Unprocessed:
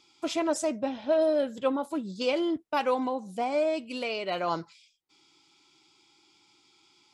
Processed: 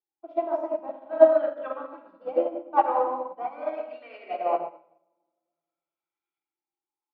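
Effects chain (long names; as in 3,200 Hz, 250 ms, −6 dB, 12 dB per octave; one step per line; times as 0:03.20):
three-way crossover with the lows and the highs turned down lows −19 dB, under 350 Hz, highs −21 dB, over 4,000 Hz
on a send: single-tap delay 205 ms −23.5 dB
on the sum: auto-filter low-pass saw up 0.47 Hz 670–1,800 Hz
drawn EQ curve 1,100 Hz 0 dB, 2,400 Hz +4 dB, 6,700 Hz +14 dB
rectangular room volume 2,300 cubic metres, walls mixed, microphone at 3.6 metres
expander for the loud parts 2.5 to 1, over −37 dBFS
level +3 dB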